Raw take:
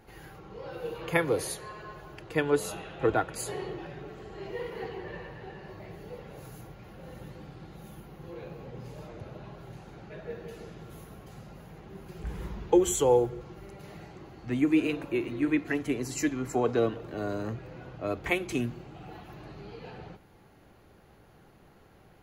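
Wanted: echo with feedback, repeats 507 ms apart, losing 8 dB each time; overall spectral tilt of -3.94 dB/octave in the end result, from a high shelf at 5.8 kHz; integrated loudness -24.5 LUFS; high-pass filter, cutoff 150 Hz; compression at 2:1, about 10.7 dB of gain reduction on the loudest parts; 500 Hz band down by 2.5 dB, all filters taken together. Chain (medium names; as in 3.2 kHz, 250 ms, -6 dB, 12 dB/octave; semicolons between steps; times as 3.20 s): high-pass 150 Hz; peaking EQ 500 Hz -3 dB; treble shelf 5.8 kHz +8 dB; compression 2:1, threshold -39 dBFS; feedback delay 507 ms, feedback 40%, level -8 dB; trim +16 dB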